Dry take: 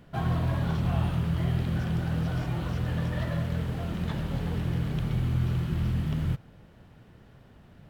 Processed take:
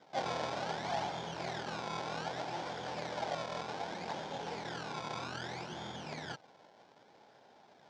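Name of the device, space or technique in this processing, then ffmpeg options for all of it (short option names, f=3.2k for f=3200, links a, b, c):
circuit-bent sampling toy: -af "acrusher=samples=25:mix=1:aa=0.000001:lfo=1:lforange=25:lforate=0.64,highpass=580,equalizer=f=820:t=q:w=4:g=6,equalizer=f=1.2k:t=q:w=4:g=-9,equalizer=f=1.9k:t=q:w=4:g=-6,equalizer=f=2.7k:t=q:w=4:g=-8,equalizer=f=4.2k:t=q:w=4:g=-3,lowpass=f=5.2k:w=0.5412,lowpass=f=5.2k:w=1.3066,volume=2.5dB"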